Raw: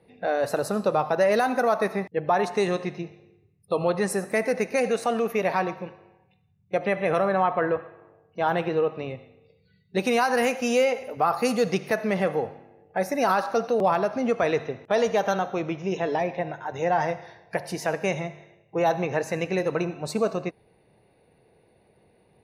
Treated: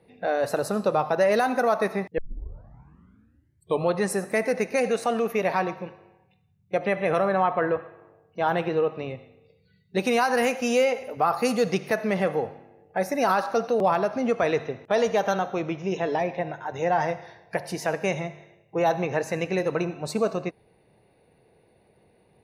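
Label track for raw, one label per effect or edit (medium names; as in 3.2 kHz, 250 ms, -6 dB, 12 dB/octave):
2.180000	2.180000	tape start 1.69 s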